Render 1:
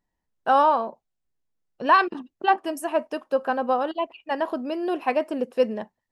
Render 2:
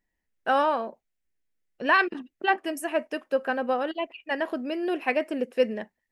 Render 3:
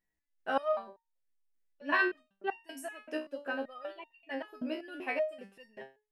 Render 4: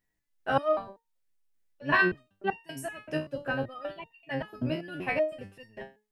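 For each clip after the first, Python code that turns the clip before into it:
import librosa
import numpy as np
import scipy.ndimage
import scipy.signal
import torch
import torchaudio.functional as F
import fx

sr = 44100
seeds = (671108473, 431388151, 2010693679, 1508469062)

y1 = fx.graphic_eq(x, sr, hz=(125, 1000, 2000, 4000), db=(-7, -9, 8, -3))
y2 = fx.resonator_held(y1, sr, hz=5.2, low_hz=62.0, high_hz=910.0)
y2 = y2 * librosa.db_to_amplitude(1.5)
y3 = fx.octave_divider(y2, sr, octaves=1, level_db=-1.0)
y3 = y3 * librosa.db_to_amplitude(4.5)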